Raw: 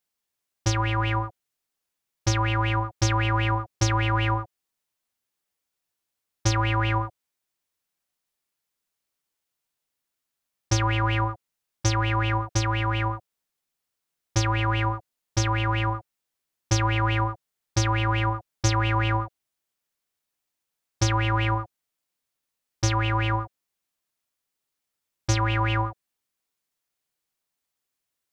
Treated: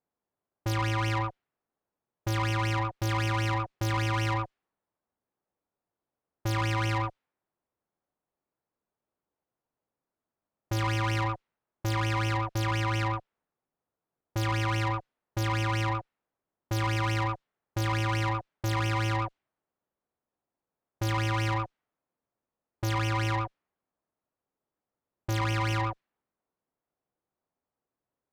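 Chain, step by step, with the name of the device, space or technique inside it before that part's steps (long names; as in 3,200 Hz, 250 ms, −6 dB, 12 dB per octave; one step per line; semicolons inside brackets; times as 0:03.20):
low-pass that shuts in the quiet parts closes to 870 Hz, open at −21 dBFS
tube preamp driven hard (tube saturation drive 32 dB, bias 0.35; low-shelf EQ 110 Hz −6 dB; high-shelf EQ 4,100 Hz −5 dB)
level +7.5 dB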